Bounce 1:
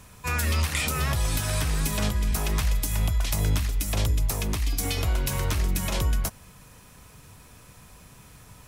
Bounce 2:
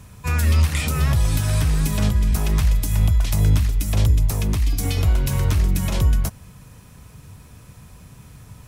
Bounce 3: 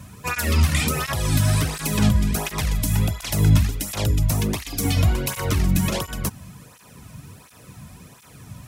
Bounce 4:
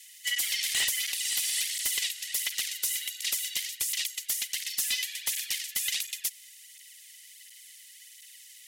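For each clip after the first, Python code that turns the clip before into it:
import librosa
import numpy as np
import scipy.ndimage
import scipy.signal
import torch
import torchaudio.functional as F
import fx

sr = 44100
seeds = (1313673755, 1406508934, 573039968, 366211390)

y1 = fx.peak_eq(x, sr, hz=100.0, db=9.5, octaves=2.8)
y2 = fx.flanger_cancel(y1, sr, hz=1.4, depth_ms=2.6)
y2 = F.gain(torch.from_numpy(y2), 6.0).numpy()
y3 = scipy.signal.sosfilt(scipy.signal.cheby1(6, 1.0, 2400.0, 'highpass', fs=sr, output='sos'), y2)
y3 = fx.fold_sine(y3, sr, drive_db=9, ceiling_db=-11.0)
y3 = y3 * np.sin(2.0 * np.pi * 500.0 * np.arange(len(y3)) / sr)
y3 = F.gain(torch.from_numpy(y3), -7.5).numpy()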